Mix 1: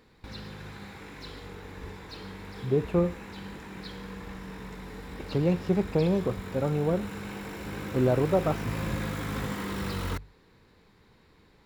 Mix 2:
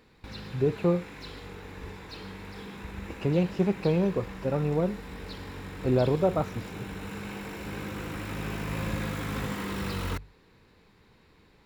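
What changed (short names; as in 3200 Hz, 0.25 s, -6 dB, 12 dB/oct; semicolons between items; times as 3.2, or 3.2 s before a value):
speech: entry -2.10 s; master: add bell 2600 Hz +3.5 dB 0.3 oct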